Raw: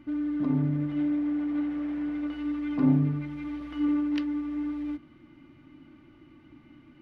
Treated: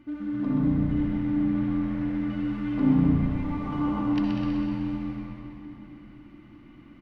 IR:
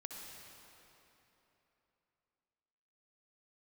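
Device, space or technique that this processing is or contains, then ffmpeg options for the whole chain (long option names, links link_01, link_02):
cave: -filter_complex "[0:a]asettb=1/sr,asplit=3[link_01][link_02][link_03];[link_01]atrim=end=3.444[link_04];[link_02]atrim=start=3.44:end=4.01,asetpts=PTS-STARTPTS,afade=type=in:duration=0.004:curve=qsin,afade=type=out:start_time=0.566:duration=0.004:curve=qsin,equalizer=frequency=500:width_type=o:width=1:gain=7,equalizer=frequency=1000:width_type=o:width=1:gain=12,equalizer=frequency=2000:width_type=o:width=1:gain=-6[link_05];[link_03]atrim=start=4.006[link_06];[link_04][link_05]acrossfade=duration=0.004:curve1=hsin:curve2=qsin[link_07];[link_07][link_06]acrossfade=duration=0.004:curve1=qsin:curve2=hsin,aecho=1:1:196:0.376[link_08];[1:a]atrim=start_sample=2205[link_09];[link_08][link_09]afir=irnorm=-1:irlink=0,asplit=8[link_10][link_11][link_12][link_13][link_14][link_15][link_16][link_17];[link_11]adelay=127,afreqshift=-86,volume=-6dB[link_18];[link_12]adelay=254,afreqshift=-172,volume=-10.9dB[link_19];[link_13]adelay=381,afreqshift=-258,volume=-15.8dB[link_20];[link_14]adelay=508,afreqshift=-344,volume=-20.6dB[link_21];[link_15]adelay=635,afreqshift=-430,volume=-25.5dB[link_22];[link_16]adelay=762,afreqshift=-516,volume=-30.4dB[link_23];[link_17]adelay=889,afreqshift=-602,volume=-35.3dB[link_24];[link_10][link_18][link_19][link_20][link_21][link_22][link_23][link_24]amix=inputs=8:normalize=0,volume=4dB"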